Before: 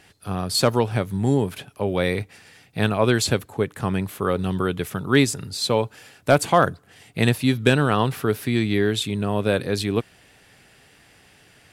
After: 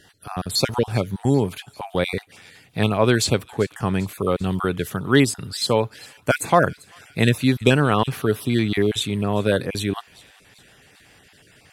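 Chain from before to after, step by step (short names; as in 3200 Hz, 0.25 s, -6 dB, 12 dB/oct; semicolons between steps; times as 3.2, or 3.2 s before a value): random spectral dropouts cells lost 21%; thin delay 0.394 s, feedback 57%, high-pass 2100 Hz, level -20 dB; gain +1.5 dB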